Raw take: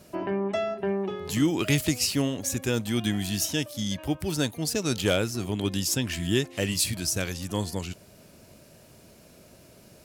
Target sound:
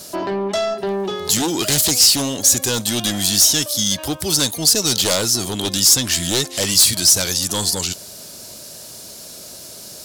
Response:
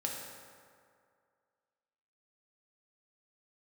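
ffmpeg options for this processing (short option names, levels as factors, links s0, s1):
-filter_complex "[0:a]aeval=exprs='0.251*sin(PI/2*2.51*val(0)/0.251)':c=same,asplit=2[s0][s1];[s1]highpass=f=720:p=1,volume=2.51,asoftclip=type=tanh:threshold=0.251[s2];[s0][s2]amix=inputs=2:normalize=0,lowpass=f=2300:p=1,volume=0.501,aexciter=amount=5:drive=8.1:freq=3600,volume=0.75"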